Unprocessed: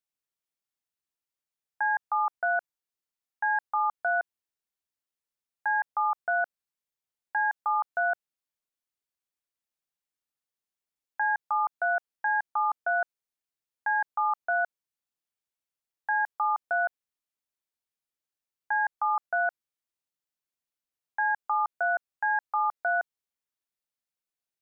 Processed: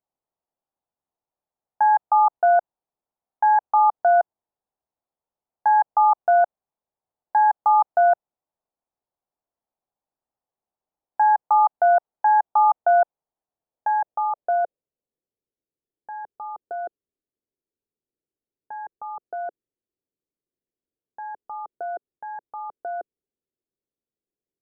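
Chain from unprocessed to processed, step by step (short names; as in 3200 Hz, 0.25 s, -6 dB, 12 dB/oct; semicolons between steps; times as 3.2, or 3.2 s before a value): low-pass sweep 800 Hz -> 400 Hz, 13.37–15.66; gain +6 dB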